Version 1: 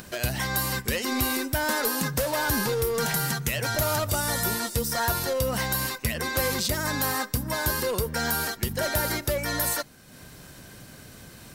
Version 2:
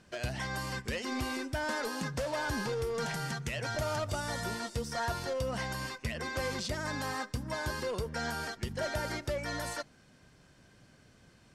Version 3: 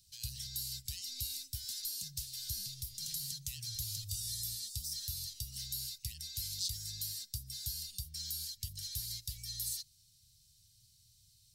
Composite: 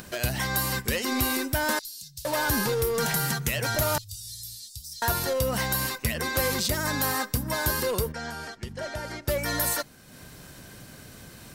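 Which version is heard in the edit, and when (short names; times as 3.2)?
1
1.79–2.25 from 3
3.98–5.02 from 3
8.12–9.28 from 2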